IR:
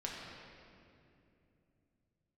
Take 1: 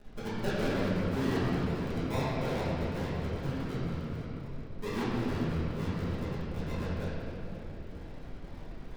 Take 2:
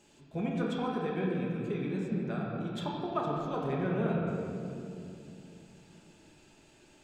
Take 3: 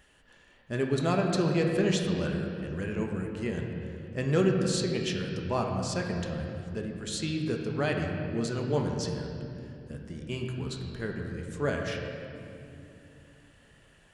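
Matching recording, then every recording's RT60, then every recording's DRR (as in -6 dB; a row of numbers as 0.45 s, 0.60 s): 2; 2.7 s, 2.7 s, 2.7 s; -12.5 dB, -4.0 dB, 1.0 dB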